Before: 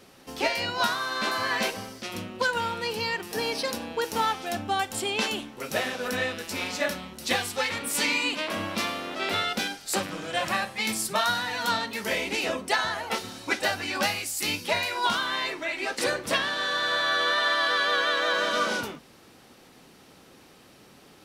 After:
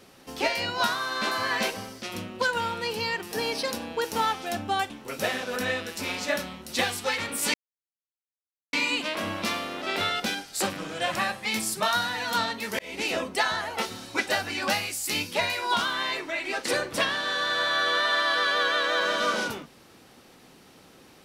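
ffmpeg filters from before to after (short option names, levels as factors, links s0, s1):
-filter_complex "[0:a]asplit=4[s0][s1][s2][s3];[s0]atrim=end=4.902[s4];[s1]atrim=start=5.418:end=8.06,asetpts=PTS-STARTPTS,afade=t=out:st=2.638:d=0.004:c=hsin,apad=pad_dur=1.19[s5];[s2]atrim=start=8.06:end=12.12,asetpts=PTS-STARTPTS,afade=t=in:d=0.004:c=hsin,afade=t=out:st=4.056:d=0.004:c=hsin[s6];[s3]atrim=start=12.12,asetpts=PTS-STARTPTS,afade=t=in:d=0.26[s7];[s5][s6][s7]concat=n=3:v=0:a=1[s8];[s4][s8]acrossfade=d=0.004:c1=hsin:c2=hsin"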